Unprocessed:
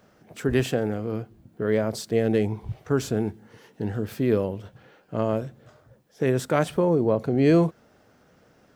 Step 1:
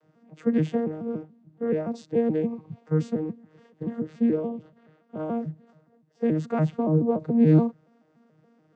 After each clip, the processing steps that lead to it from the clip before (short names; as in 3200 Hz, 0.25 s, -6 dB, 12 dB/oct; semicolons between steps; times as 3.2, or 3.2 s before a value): arpeggiated vocoder bare fifth, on D#3, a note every 0.143 s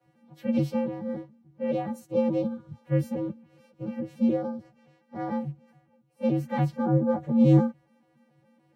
inharmonic rescaling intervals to 119%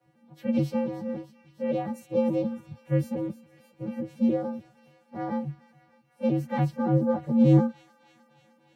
thin delay 0.304 s, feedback 70%, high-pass 2000 Hz, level -13 dB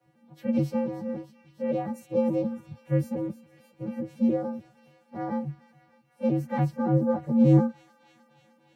dynamic EQ 3400 Hz, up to -6 dB, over -58 dBFS, Q 1.6